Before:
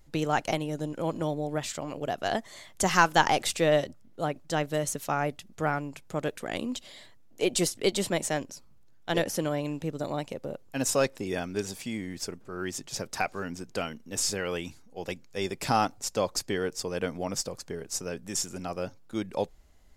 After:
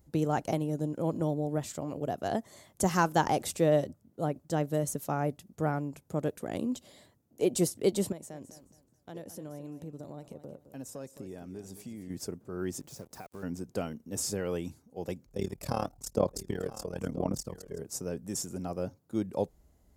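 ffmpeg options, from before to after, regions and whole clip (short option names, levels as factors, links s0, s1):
-filter_complex "[0:a]asettb=1/sr,asplit=3[s0][s1][s2];[s0]atrim=end=8.124[s3];[s1]atrim=start=8.12:end=12.1,asetpts=PTS-STARTPTS,afade=t=in:d=0.004:c=qsin,afade=t=out:st=3.976:d=0.004:c=qsin,acompressor=threshold=0.00708:ratio=3:attack=3.2:release=140:knee=1:detection=peak,aecho=1:1:214|428|642:0.237|0.064|0.0173,atrim=end_sample=175518[s4];[s2]atrim=start=12.096[s5];[s3][s4]acrossfade=d=0.004:c1=hsin:c2=qsin[s6];[s6][s5]acrossfade=d=0.004:c1=qsin:c2=hsin,asettb=1/sr,asplit=3[s7][s8][s9];[s7]atrim=end=12.804[s10];[s8]atrim=start=12.8:end=13.43,asetpts=PTS-STARTPTS,afade=t=in:d=0.004:c=qsin,afade=t=out:st=0.626:d=0.004:c=qsin,acompressor=threshold=0.00891:ratio=3:attack=3.2:release=140:knee=1:detection=peak,acrusher=bits=7:mix=0:aa=0.5[s11];[s9]atrim=start=13.426[s12];[s10][s11]acrossfade=d=0.004:c1=hsin:c2=qsin[s13];[s13][s12]acrossfade=d=0.004:c1=qsin:c2=hsin,asettb=1/sr,asplit=3[s14][s15][s16];[s14]atrim=end=15.264[s17];[s15]atrim=start=15.26:end=17.79,asetpts=PTS-STARTPTS,afade=t=in:d=0.004:c=qsin,afade=t=out:st=2.526:d=0.004:c=qsin,aecho=1:1:982:0.168,atrim=end_sample=111573,aphaser=in_gain=1:out_gain=1:delay=1.9:decay=0.51:speed=1:type=sinusoidal,tremolo=f=37:d=0.919[s18];[s16]atrim=start=17.786[s19];[s17][s18]acrossfade=d=0.004:c1=hsin:c2=qsin[s20];[s20][s19]acrossfade=d=0.004:c1=qsin:c2=hsin,highpass=58,equalizer=f=2700:w=0.37:g=-14.5,volume=1.33"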